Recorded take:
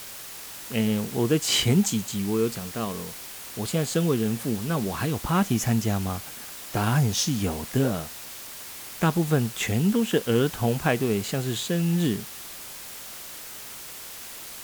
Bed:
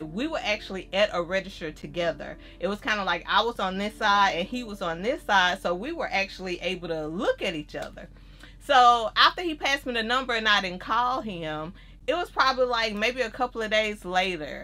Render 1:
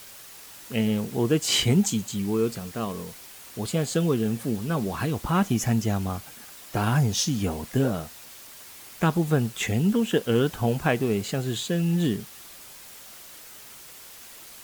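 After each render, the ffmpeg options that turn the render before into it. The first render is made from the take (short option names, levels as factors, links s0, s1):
-af "afftdn=nr=6:nf=-40"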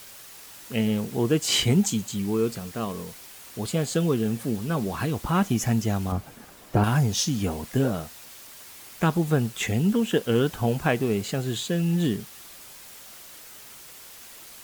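-filter_complex "[0:a]asettb=1/sr,asplit=3[s0][s1][s2];[s0]atrim=end=6.124[s3];[s1]atrim=start=6.12:end=6.84,asetpts=PTS-STARTPTS,afade=t=in:d=0.004:c=qsin,afade=t=out:st=0.716:d=0.004:c=qsin,tiltshelf=f=1300:g=7[s4];[s2]atrim=start=6.836[s5];[s3][s4]acrossfade=d=0.004:c1=hsin:c2=qsin[s6];[s6][s5]acrossfade=d=0.004:c1=qsin:c2=hsin"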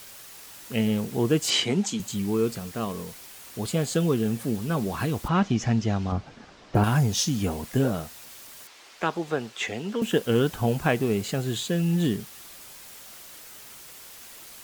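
-filter_complex "[0:a]asettb=1/sr,asplit=3[s0][s1][s2];[s0]atrim=end=1.504[s3];[s1]atrim=start=1.5:end=2,asetpts=PTS-STARTPTS,afade=t=in:d=0.004:c=qsin,afade=t=out:st=0.496:d=0.004:c=qsin,highpass=230,lowpass=6400[s4];[s2]atrim=start=1.996[s5];[s3][s4]acrossfade=d=0.004:c1=hsin:c2=qsin[s6];[s6][s5]acrossfade=d=0.004:c1=qsin:c2=hsin,asettb=1/sr,asplit=3[s7][s8][s9];[s7]atrim=end=5.284[s10];[s8]atrim=start=5.28:end=6.75,asetpts=PTS-STARTPTS,afade=t=in:d=0.004:c=qsin,afade=t=out:st=1.466:d=0.004:c=qsin,lowpass=f=5700:w=0.5412,lowpass=f=5700:w=1.3066[s11];[s9]atrim=start=6.746[s12];[s10][s11]acrossfade=d=0.004:c1=hsin:c2=qsin[s13];[s13][s12]acrossfade=d=0.004:c1=qsin:c2=hsin,asettb=1/sr,asplit=3[s14][s15][s16];[s14]atrim=end=8.674[s17];[s15]atrim=start=8.67:end=10.02,asetpts=PTS-STARTPTS,afade=t=in:d=0.004:c=qsin,afade=t=out:st=1.346:d=0.004:c=qsin,acrossover=split=310 6600:gain=0.141 1 0.112[s18][s19][s20];[s18][s19][s20]amix=inputs=3:normalize=0[s21];[s16]atrim=start=10.016[s22];[s17][s21]acrossfade=d=0.004:c1=hsin:c2=qsin[s23];[s23][s22]acrossfade=d=0.004:c1=qsin:c2=hsin"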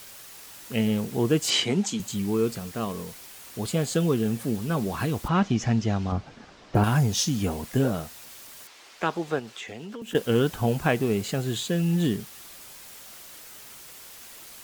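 -filter_complex "[0:a]asettb=1/sr,asplit=3[s0][s1][s2];[s0]atrim=end=9.394[s3];[s1]atrim=start=9.39:end=10.15,asetpts=PTS-STARTPTS,afade=t=in:d=0.004:c=qsin,afade=t=out:st=0.756:d=0.004:c=qsin,acompressor=threshold=0.02:ratio=12:attack=3.2:release=140:knee=1:detection=peak[s4];[s2]atrim=start=10.146[s5];[s3][s4]acrossfade=d=0.004:c1=hsin:c2=qsin[s6];[s6][s5]acrossfade=d=0.004:c1=qsin:c2=hsin"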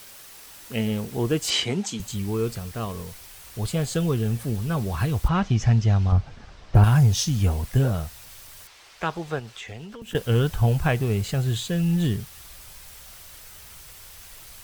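-af "bandreject=f=6900:w=27,asubboost=boost=9.5:cutoff=82"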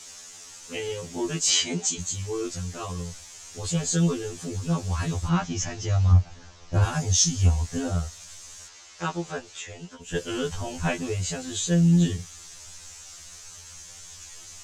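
-af "lowpass=f=6800:t=q:w=4.7,afftfilt=real='re*2*eq(mod(b,4),0)':imag='im*2*eq(mod(b,4),0)':win_size=2048:overlap=0.75"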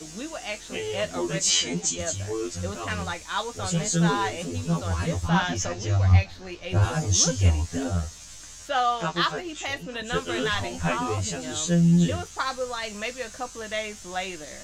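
-filter_complex "[1:a]volume=0.473[s0];[0:a][s0]amix=inputs=2:normalize=0"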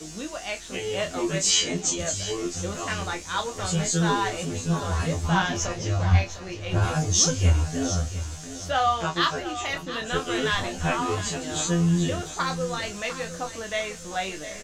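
-filter_complex "[0:a]asplit=2[s0][s1];[s1]adelay=26,volume=0.447[s2];[s0][s2]amix=inputs=2:normalize=0,aecho=1:1:705|1410|2115|2820:0.237|0.0877|0.0325|0.012"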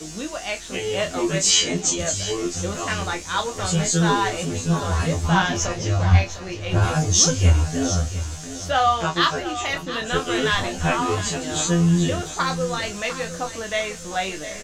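-af "volume=1.58"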